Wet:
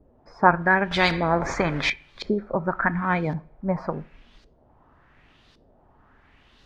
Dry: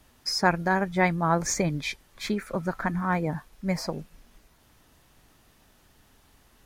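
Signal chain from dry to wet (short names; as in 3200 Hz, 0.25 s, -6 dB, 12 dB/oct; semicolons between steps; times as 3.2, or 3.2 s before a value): LFO low-pass saw up 0.9 Hz 440–4600 Hz; two-slope reverb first 0.45 s, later 1.5 s, from -25 dB, DRR 16.5 dB; 0.91–1.9 spectral compressor 2:1; gain +2 dB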